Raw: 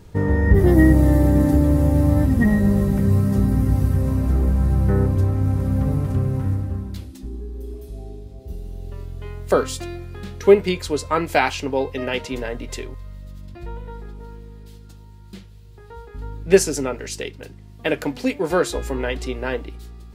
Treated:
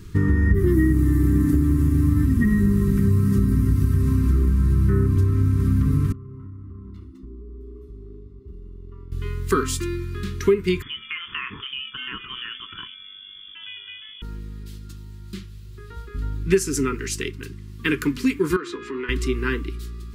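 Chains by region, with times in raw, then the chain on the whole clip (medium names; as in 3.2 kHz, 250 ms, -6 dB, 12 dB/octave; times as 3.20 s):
6.12–9.12 s: Savitzky-Golay filter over 65 samples + bass shelf 490 Hz -10 dB + compression 16:1, threshold -38 dBFS
10.82–14.22 s: bass shelf 380 Hz -12 dB + compression 4:1, threshold -30 dBFS + frequency inversion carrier 3.4 kHz
18.56–19.09 s: band-stop 1.6 kHz, Q 23 + compression 12:1, threshold -23 dBFS + band-pass 290–3000 Hz
whole clip: Chebyshev band-stop 390–1100 Hz, order 3; dynamic bell 4.1 kHz, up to -5 dB, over -45 dBFS, Q 1.1; compression 5:1, threshold -20 dBFS; trim +5 dB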